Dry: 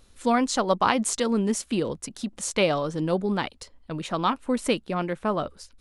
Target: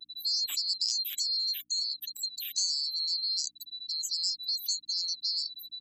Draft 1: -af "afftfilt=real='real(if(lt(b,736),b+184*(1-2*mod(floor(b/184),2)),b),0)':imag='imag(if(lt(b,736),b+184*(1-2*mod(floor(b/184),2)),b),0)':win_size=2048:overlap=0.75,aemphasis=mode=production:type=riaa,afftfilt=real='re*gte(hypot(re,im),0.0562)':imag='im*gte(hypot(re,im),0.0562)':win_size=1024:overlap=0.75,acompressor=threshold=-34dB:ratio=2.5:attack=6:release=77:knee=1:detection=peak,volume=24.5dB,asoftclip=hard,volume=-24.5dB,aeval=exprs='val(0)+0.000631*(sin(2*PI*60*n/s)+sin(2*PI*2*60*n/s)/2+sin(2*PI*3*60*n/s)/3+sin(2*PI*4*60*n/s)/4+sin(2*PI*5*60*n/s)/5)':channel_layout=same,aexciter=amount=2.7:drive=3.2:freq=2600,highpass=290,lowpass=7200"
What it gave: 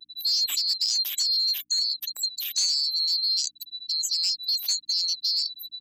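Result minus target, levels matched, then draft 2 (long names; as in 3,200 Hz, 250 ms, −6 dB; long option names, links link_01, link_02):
downward compressor: peak gain reduction −7 dB
-af "afftfilt=real='real(if(lt(b,736),b+184*(1-2*mod(floor(b/184),2)),b),0)':imag='imag(if(lt(b,736),b+184*(1-2*mod(floor(b/184),2)),b),0)':win_size=2048:overlap=0.75,aemphasis=mode=production:type=riaa,afftfilt=real='re*gte(hypot(re,im),0.0562)':imag='im*gte(hypot(re,im),0.0562)':win_size=1024:overlap=0.75,acompressor=threshold=-45.5dB:ratio=2.5:attack=6:release=77:knee=1:detection=peak,volume=24.5dB,asoftclip=hard,volume=-24.5dB,aeval=exprs='val(0)+0.000631*(sin(2*PI*60*n/s)+sin(2*PI*2*60*n/s)/2+sin(2*PI*3*60*n/s)/3+sin(2*PI*4*60*n/s)/4+sin(2*PI*5*60*n/s)/5)':channel_layout=same,aexciter=amount=2.7:drive=3.2:freq=2600,highpass=290,lowpass=7200"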